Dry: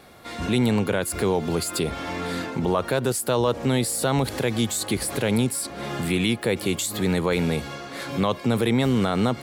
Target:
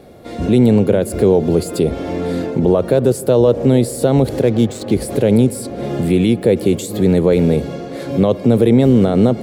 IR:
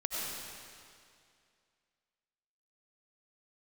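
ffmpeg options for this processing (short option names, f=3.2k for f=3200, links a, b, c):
-filter_complex "[0:a]lowshelf=f=760:t=q:w=1.5:g=10,asettb=1/sr,asplit=3[a][b][c];[a]atrim=end=4.424[d];[b]atrim=start=4.42:end=4.94,asetpts=PTS-STARTPTS,afade=t=in:d=0.004:c=qsin,afade=t=out:st=0.516:d=0.004:c=qsin,adynamicsmooth=sensitivity=5:basefreq=1.8k[e];[c]atrim=start=4.936[f];[d][e]acrossfade=d=0.004:c1=hsin:c2=qsin[g];[g][f]acrossfade=d=0.004:c1=qsin:c2=hsin,asplit=2[h][i];[1:a]atrim=start_sample=2205,asetrate=40131,aresample=44100,lowpass=2.1k[j];[i][j]afir=irnorm=-1:irlink=0,volume=-21dB[k];[h][k]amix=inputs=2:normalize=0,volume=-1.5dB"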